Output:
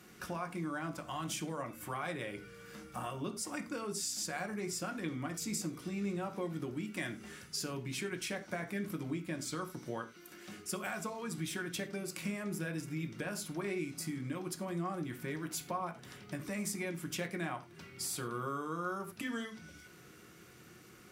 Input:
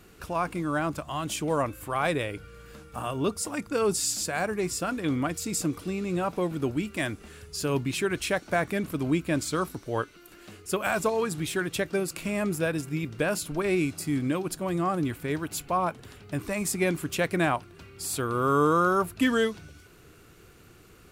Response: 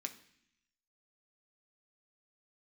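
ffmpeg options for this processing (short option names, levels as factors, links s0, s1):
-filter_complex "[0:a]acompressor=threshold=0.02:ratio=5[s0];[1:a]atrim=start_sample=2205,atrim=end_sample=4410,asetrate=38808,aresample=44100[s1];[s0][s1]afir=irnorm=-1:irlink=0"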